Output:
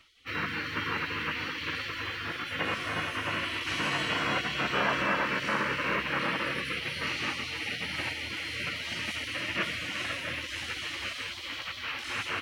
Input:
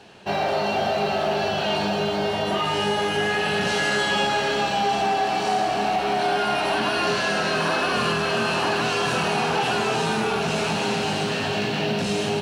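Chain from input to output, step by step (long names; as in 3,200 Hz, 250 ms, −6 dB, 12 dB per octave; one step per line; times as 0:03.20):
octave-band graphic EQ 500/1,000/2,000/4,000/8,000 Hz +4/+10/+8/−8/−10 dB
gate on every frequency bin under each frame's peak −20 dB weak
level −1.5 dB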